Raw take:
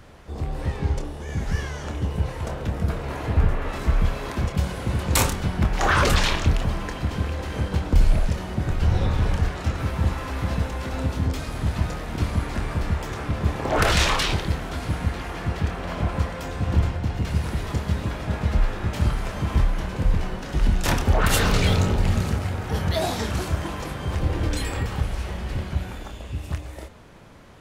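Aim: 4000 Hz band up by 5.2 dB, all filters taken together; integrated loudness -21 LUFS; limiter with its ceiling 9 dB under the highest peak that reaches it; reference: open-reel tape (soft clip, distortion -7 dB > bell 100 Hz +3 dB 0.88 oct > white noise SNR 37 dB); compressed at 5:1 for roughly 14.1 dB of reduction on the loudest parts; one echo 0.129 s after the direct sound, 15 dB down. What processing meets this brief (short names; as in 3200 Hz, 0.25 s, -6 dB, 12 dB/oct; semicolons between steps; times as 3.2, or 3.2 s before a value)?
bell 4000 Hz +6.5 dB; compressor 5:1, threshold -29 dBFS; limiter -24.5 dBFS; echo 0.129 s -15 dB; soft clip -40 dBFS; bell 100 Hz +3 dB 0.88 oct; white noise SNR 37 dB; gain +21.5 dB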